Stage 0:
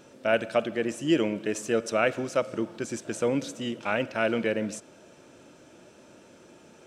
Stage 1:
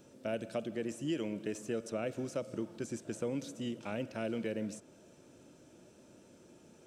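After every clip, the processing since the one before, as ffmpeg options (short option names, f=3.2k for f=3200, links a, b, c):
-filter_complex "[0:a]equalizer=f=1.6k:w=0.32:g=-9,acrossover=split=660|3000[a][b][c];[a]acompressor=threshold=-31dB:ratio=4[d];[b]acompressor=threshold=-43dB:ratio=4[e];[c]acompressor=threshold=-47dB:ratio=4[f];[d][e][f]amix=inputs=3:normalize=0,volume=-2.5dB"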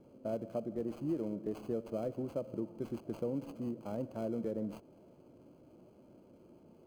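-filter_complex "[0:a]equalizer=f=3.3k:t=o:w=1.2:g=-13,acrossover=split=1300[a][b];[b]acrusher=samples=24:mix=1:aa=0.000001[c];[a][c]amix=inputs=2:normalize=0"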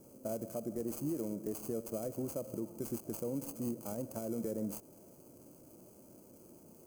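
-af "aexciter=amount=10.8:drive=5.3:freq=5.5k,alimiter=level_in=4.5dB:limit=-24dB:level=0:latency=1:release=84,volume=-4.5dB,volume=1dB"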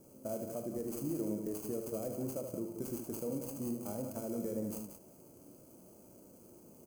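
-af "aecho=1:1:37.9|75.8|180.8:0.282|0.447|0.398,volume=-1.5dB"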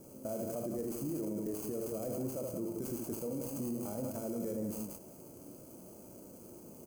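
-af "alimiter=level_in=11dB:limit=-24dB:level=0:latency=1:release=30,volume=-11dB,volume=5.5dB"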